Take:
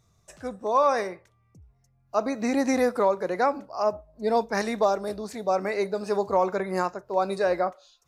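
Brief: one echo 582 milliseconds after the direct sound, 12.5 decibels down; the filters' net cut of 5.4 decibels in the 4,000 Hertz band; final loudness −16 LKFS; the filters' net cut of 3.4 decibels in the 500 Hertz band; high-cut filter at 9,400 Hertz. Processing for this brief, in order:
low-pass filter 9,400 Hz
parametric band 500 Hz −4 dB
parametric band 4,000 Hz −6.5 dB
single-tap delay 582 ms −12.5 dB
level +12.5 dB

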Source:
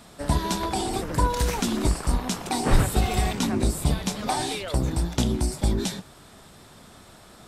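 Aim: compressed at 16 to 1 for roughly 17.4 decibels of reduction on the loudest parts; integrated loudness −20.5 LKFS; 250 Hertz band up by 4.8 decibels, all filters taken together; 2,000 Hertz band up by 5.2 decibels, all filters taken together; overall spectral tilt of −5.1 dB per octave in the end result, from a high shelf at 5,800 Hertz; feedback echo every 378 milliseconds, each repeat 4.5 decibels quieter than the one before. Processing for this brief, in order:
parametric band 250 Hz +6 dB
parametric band 2,000 Hz +7 dB
high-shelf EQ 5,800 Hz −5 dB
downward compressor 16 to 1, threshold −28 dBFS
repeating echo 378 ms, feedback 60%, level −4.5 dB
level +11.5 dB

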